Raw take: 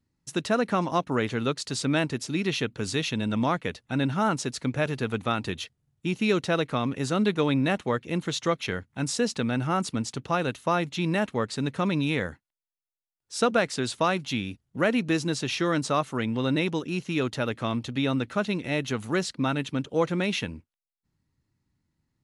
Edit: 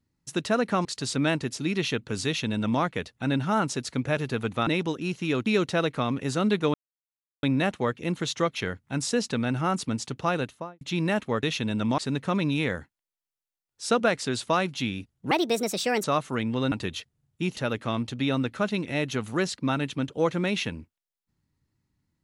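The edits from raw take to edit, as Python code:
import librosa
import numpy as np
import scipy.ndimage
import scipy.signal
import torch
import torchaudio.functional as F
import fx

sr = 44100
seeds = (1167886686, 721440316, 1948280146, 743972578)

y = fx.studio_fade_out(x, sr, start_s=10.41, length_s=0.46)
y = fx.edit(y, sr, fx.cut(start_s=0.85, length_s=0.69),
    fx.duplicate(start_s=2.95, length_s=0.55, to_s=11.49),
    fx.swap(start_s=5.36, length_s=0.85, other_s=16.54, other_length_s=0.79),
    fx.insert_silence(at_s=7.49, length_s=0.69),
    fx.speed_span(start_s=14.82, length_s=1.04, speed=1.43), tone=tone)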